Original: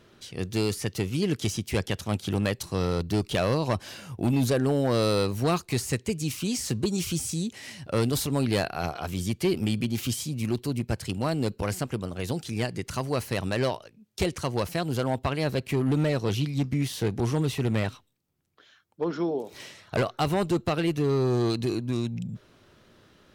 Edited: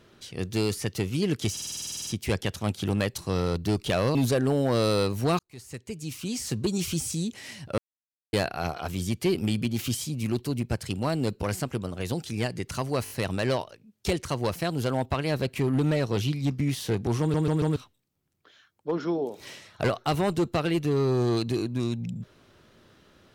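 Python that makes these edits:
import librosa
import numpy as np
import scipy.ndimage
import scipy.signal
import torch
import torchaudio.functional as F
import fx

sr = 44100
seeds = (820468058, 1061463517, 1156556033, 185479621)

y = fx.edit(x, sr, fx.stutter(start_s=1.52, slice_s=0.05, count=12),
    fx.cut(start_s=3.6, length_s=0.74),
    fx.fade_in_span(start_s=5.58, length_s=1.33),
    fx.silence(start_s=7.97, length_s=0.55),
    fx.stutter(start_s=13.23, slice_s=0.02, count=4),
    fx.stutter_over(start_s=17.33, slice_s=0.14, count=4), tone=tone)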